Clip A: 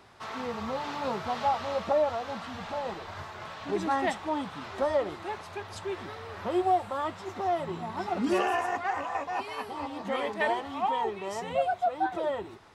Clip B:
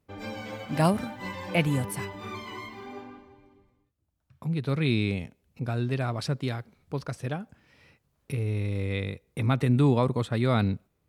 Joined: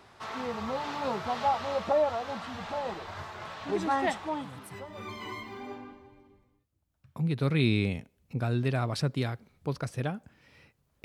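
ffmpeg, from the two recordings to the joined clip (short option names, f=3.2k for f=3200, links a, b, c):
-filter_complex "[0:a]apad=whole_dur=11.04,atrim=end=11.04,atrim=end=5.25,asetpts=PTS-STARTPTS[a];[1:a]atrim=start=1.43:end=8.3,asetpts=PTS-STARTPTS[b];[a][b]acrossfade=d=1.08:c1=qua:c2=qua"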